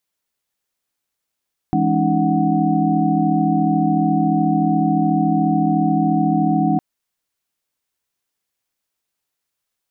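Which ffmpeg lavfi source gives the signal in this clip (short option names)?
-f lavfi -i "aevalsrc='0.0944*(sin(2*PI*164.81*t)+sin(2*PI*207.65*t)+sin(2*PI*277.18*t)+sin(2*PI*311.13*t)+sin(2*PI*739.99*t))':d=5.06:s=44100"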